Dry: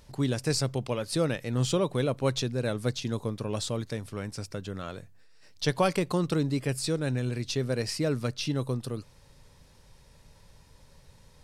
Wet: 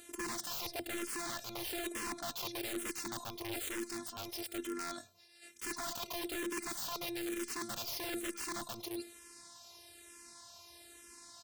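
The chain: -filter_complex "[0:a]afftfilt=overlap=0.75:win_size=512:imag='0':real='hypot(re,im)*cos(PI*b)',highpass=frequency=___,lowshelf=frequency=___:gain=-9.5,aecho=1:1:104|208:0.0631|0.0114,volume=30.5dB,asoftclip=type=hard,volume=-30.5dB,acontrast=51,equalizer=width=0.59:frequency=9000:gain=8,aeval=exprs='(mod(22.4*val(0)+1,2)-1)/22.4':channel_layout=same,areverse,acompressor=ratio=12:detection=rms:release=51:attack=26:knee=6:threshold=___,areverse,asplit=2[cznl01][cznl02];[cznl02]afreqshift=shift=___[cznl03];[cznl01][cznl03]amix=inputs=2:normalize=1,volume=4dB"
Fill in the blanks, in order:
110, 150, -41dB, -1.1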